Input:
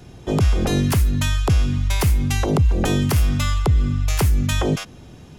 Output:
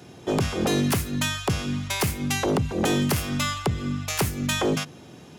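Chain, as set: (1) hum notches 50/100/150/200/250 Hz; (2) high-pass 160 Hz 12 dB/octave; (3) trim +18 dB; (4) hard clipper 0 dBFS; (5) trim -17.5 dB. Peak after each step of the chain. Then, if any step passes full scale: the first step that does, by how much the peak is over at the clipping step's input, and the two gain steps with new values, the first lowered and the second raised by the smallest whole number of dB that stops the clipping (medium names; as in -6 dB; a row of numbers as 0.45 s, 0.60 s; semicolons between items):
-7.5 dBFS, -9.5 dBFS, +8.5 dBFS, 0.0 dBFS, -17.5 dBFS; step 3, 8.5 dB; step 3 +9 dB, step 5 -8.5 dB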